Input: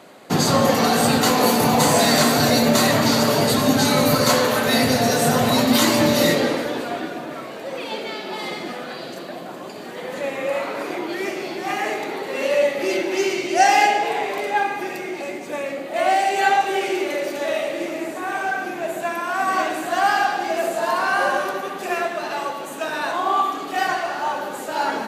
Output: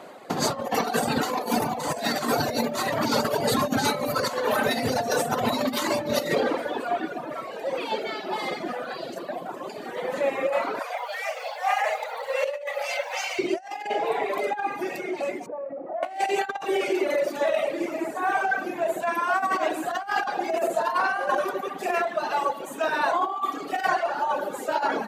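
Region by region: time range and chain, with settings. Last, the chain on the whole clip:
10.79–13.39 s: brick-wall FIR high-pass 460 Hz + bit-crushed delay 177 ms, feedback 35%, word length 7-bit, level -11 dB
15.46–16.03 s: Chebyshev low-pass 890 Hz + compression 10:1, threshold -30 dBFS
whole clip: reverb removal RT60 1.6 s; peaking EQ 740 Hz +7.5 dB 2.6 oct; compressor with a negative ratio -18 dBFS, ratio -0.5; trim -6 dB

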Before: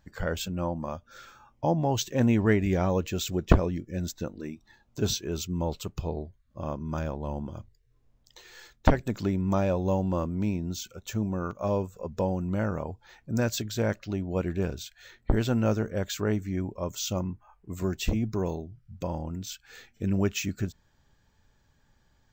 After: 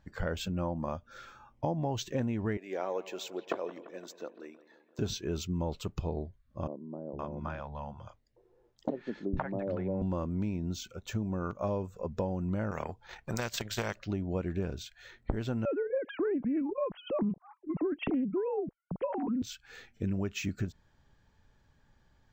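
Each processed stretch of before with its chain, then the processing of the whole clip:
2.57–4.99 s: ladder high-pass 320 Hz, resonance 20% + bucket-brigade echo 171 ms, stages 4096, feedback 64%, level -18 dB
6.67–10.02 s: three bands offset in time mids, lows, highs 460/520 ms, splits 190/590 Hz + low-pass that closes with the level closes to 1.6 kHz, closed at -26 dBFS + bass shelf 160 Hz -10 dB
12.71–14.04 s: peaking EQ 280 Hz -14.5 dB 0.33 oct + transient shaper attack +10 dB, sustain -11 dB + spectrum-flattening compressor 2:1
15.65–19.42 s: formants replaced by sine waves + tilt EQ -3 dB/octave + loudspeaker Doppler distortion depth 0.17 ms
whole clip: treble shelf 5.9 kHz -11.5 dB; compression 10:1, threshold -28 dBFS

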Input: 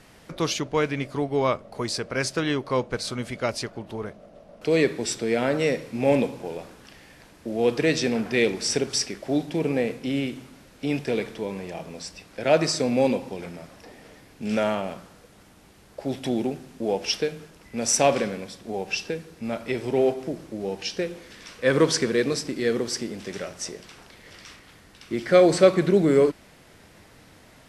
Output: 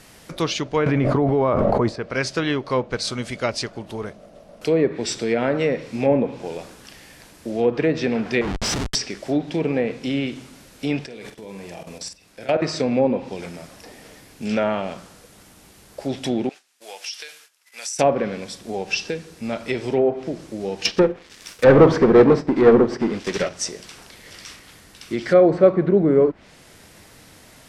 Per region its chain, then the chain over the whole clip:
0.86–1.96 s: treble shelf 8 kHz +12 dB + level flattener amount 100%
8.41–8.95 s: bass shelf 92 Hz -9.5 dB + comb 1 ms, depth 61% + Schmitt trigger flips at -27.5 dBFS
11.06–12.62 s: level held to a coarse grid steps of 20 dB + doubling 46 ms -7.5 dB
16.49–17.99 s: high-pass 1.4 kHz + gate -55 dBFS, range -15 dB + compression 16:1, threshold -34 dBFS
20.85–23.49 s: waveshaping leveller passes 5 + doubling 48 ms -12 dB + upward expansion 2.5:1, over -21 dBFS
whole clip: low-pass that closes with the level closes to 1.1 kHz, closed at -16.5 dBFS; treble shelf 4.6 kHz +9 dB; trim +2.5 dB

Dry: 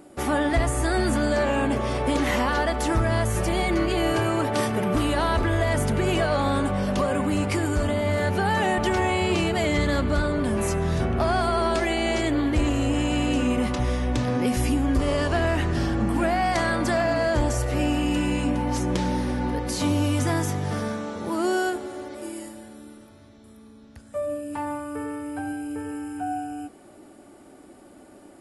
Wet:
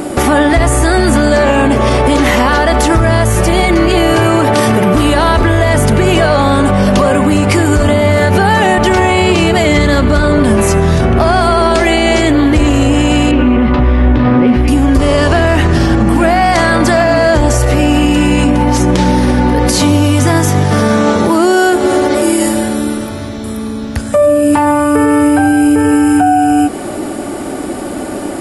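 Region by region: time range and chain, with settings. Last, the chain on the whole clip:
13.31–14.68 s: distance through air 420 m + doubling 13 ms -5 dB + loudspeaker Doppler distortion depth 0.11 ms
whole clip: compression, threshold -34 dBFS; loudness maximiser +29.5 dB; trim -1 dB

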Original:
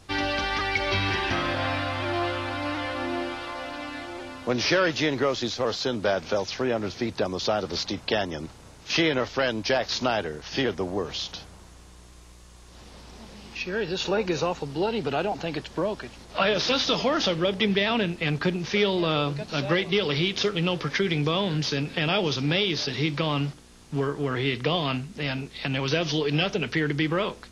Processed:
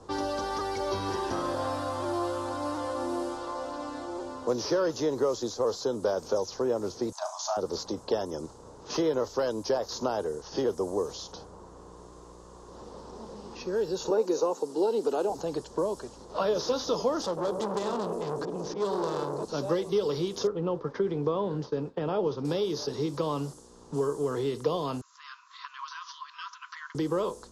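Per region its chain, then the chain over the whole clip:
7.12–7.57 s: brick-wall FIR high-pass 600 Hz + peaking EQ 6.5 kHz +10 dB 0.32 oct + flutter echo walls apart 6 m, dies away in 0.26 s
14.10–15.30 s: high-pass 250 Hz 24 dB/octave + bass shelf 330 Hz +6 dB
17.21–19.45 s: slow attack 125 ms + feedback echo behind a band-pass 105 ms, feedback 74%, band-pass 420 Hz, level -6.5 dB + transformer saturation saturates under 1.9 kHz
20.47–22.45 s: low-pass 1.9 kHz + expander -32 dBFS
25.01–26.95 s: treble shelf 3 kHz -11 dB + upward compressor, threshold -28 dBFS + brick-wall FIR band-pass 960–7500 Hz
whole clip: level-controlled noise filter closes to 2.7 kHz, open at -24 dBFS; FFT filter 150 Hz 0 dB, 280 Hz +3 dB, 470 Hz +11 dB, 690 Hz +2 dB, 1 kHz +8 dB, 2.3 kHz -16 dB, 7.5 kHz +13 dB; three bands compressed up and down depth 40%; trim -8.5 dB

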